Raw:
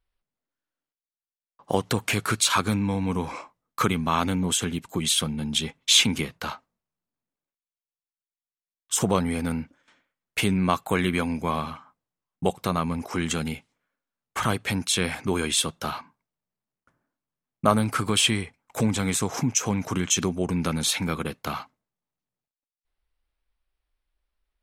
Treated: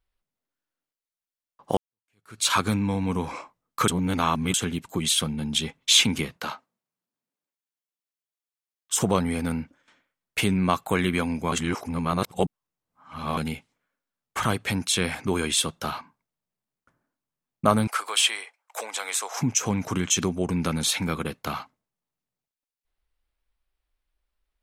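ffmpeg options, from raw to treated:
ffmpeg -i in.wav -filter_complex "[0:a]asettb=1/sr,asplit=3[link_01][link_02][link_03];[link_01]atrim=end=6.364[link_04];[link_02]atrim=start=6.36:end=8.93,asetpts=PTS-STARTPTS,afade=type=in:duration=0.004:curve=qsin,afade=type=out:start_time=2.566:duration=0.004:curve=qsin,highpass=160[link_05];[link_03]atrim=start=8.926[link_06];[link_04][link_05]acrossfade=duration=0.004:curve1=hsin:curve2=qsin[link_07];[link_07][link_06]acrossfade=duration=0.004:curve1=qsin:curve2=hsin,asettb=1/sr,asplit=3[link_08][link_09][link_10];[link_08]atrim=end=17.874[link_11];[link_09]atrim=start=17.87:end=19.41,asetpts=PTS-STARTPTS,afade=type=in:duration=0.004:curve=qsin,afade=type=out:start_time=1.536:duration=0.004:curve=qsin,highpass=frequency=580:width=0.5412,highpass=frequency=580:width=1.3066[link_12];[link_10]atrim=start=19.406[link_13];[link_11][link_12]acrossfade=duration=0.004:curve1=hsin:curve2=qsin[link_14];[link_14][link_13]acrossfade=duration=0.004:curve1=qsin:curve2=hsin,asplit=6[link_15][link_16][link_17][link_18][link_19][link_20];[link_15]atrim=end=1.77,asetpts=PTS-STARTPTS,afade=type=out:start_time=1.766:duration=0.004:curve=hsin[link_21];[link_16]atrim=start=1.77:end=3.882,asetpts=PTS-STARTPTS,afade=type=in:duration=0.69:curve=exp[link_22];[link_17]atrim=start=3.878:end=4.542,asetpts=PTS-STARTPTS,areverse[link_23];[link_18]atrim=start=4.538:end=11.522[link_24];[link_19]atrim=start=11.518:end=13.372,asetpts=PTS-STARTPTS,areverse[link_25];[link_20]atrim=start=13.368[link_26];[link_21][link_22]concat=n=2:v=0:a=1[link_27];[link_27][link_23]acrossfade=duration=0.004:curve1=hsin:curve2=hsin[link_28];[link_28][link_24]acrossfade=duration=0.004:curve1=hsin:curve2=hsin[link_29];[link_29][link_25]acrossfade=duration=0.004:curve1=hsin:curve2=hsin[link_30];[link_30][link_26]acrossfade=duration=0.004:curve1=hsin:curve2=hsin" out.wav

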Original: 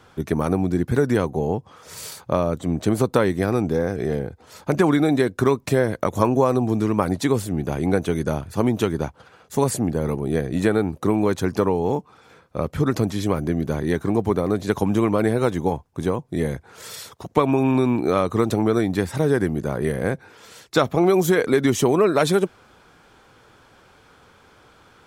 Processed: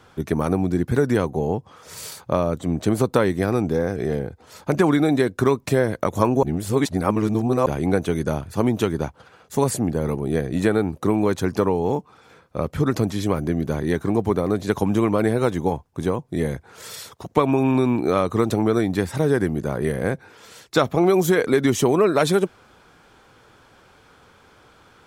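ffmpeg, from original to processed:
ffmpeg -i in.wav -filter_complex "[0:a]asplit=3[link_01][link_02][link_03];[link_01]atrim=end=6.432[link_04];[link_02]atrim=start=6.428:end=7.662,asetpts=PTS-STARTPTS,areverse[link_05];[link_03]atrim=start=7.658[link_06];[link_04][link_05]acrossfade=duration=0.004:curve1=hsin:curve2=hsin[link_07];[link_07][link_06]acrossfade=duration=0.004:curve1=hsin:curve2=hsin" out.wav

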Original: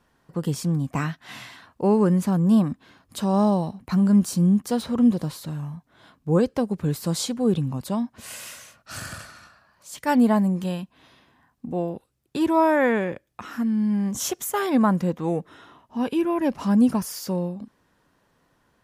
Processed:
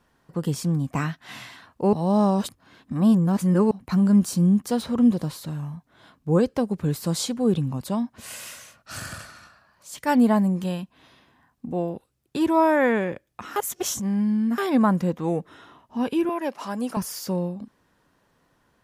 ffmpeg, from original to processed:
ffmpeg -i in.wav -filter_complex "[0:a]asettb=1/sr,asplit=3[link_01][link_02][link_03];[link_01]atrim=end=16.294[link_04];[link_02]atrim=start=16.29:end=16.97,asetpts=PTS-STARTPTS,afade=type=in:duration=0.004:curve=qsin,afade=type=out:start_time=0.676:duration=0.004:curve=qsin,highpass=460[link_05];[link_03]atrim=start=16.966[link_06];[link_04][link_05]acrossfade=duration=0.004:curve1=hsin:curve2=qsin[link_07];[link_07][link_06]acrossfade=duration=0.004:curve1=qsin:curve2=hsin,asplit=5[link_08][link_09][link_10][link_11][link_12];[link_08]atrim=end=1.932[link_13];[link_09]atrim=start=1.928:end=3.712,asetpts=PTS-STARTPTS,areverse[link_14];[link_10]atrim=start=3.708:end=13.562[link_15];[link_11]atrim=start=13.558:end=14.582,asetpts=PTS-STARTPTS,areverse[link_16];[link_12]atrim=start=14.578[link_17];[link_13][link_14]acrossfade=duration=0.004:curve1=hsin:curve2=hsin[link_18];[link_18][link_15]acrossfade=duration=0.004:curve1=hsin:curve2=hsin[link_19];[link_19][link_16]acrossfade=duration=0.004:curve1=hsin:curve2=hsin[link_20];[link_20][link_17]acrossfade=duration=0.004:curve1=hsin:curve2=hsin" out.wav

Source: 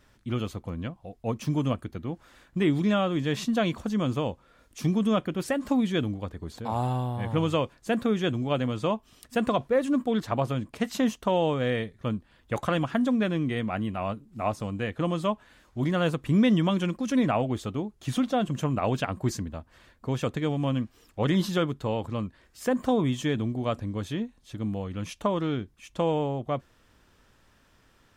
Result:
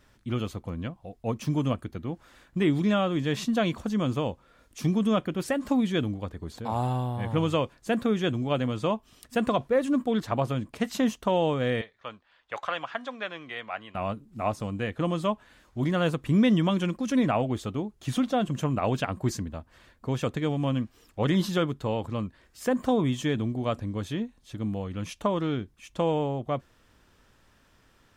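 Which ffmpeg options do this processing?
ffmpeg -i in.wav -filter_complex "[0:a]asettb=1/sr,asplit=3[link_01][link_02][link_03];[link_01]atrim=end=11.814[link_04];[link_02]atrim=start=11.81:end=13.95,asetpts=PTS-STARTPTS,afade=type=in:duration=0.004:curve=qsin,afade=type=out:start_time=2.136:duration=0.004:curve=qsin,acrossover=split=580 5800:gain=0.0708 1 0.0794[link_05][link_06][link_07];[link_05][link_06][link_07]amix=inputs=3:normalize=0[link_08];[link_03]atrim=start=13.946[link_09];[link_04][link_08]acrossfade=duration=0.004:curve1=hsin:curve2=qsin[link_10];[link_10][link_09]acrossfade=duration=0.004:curve1=qsin:curve2=hsin" out.wav

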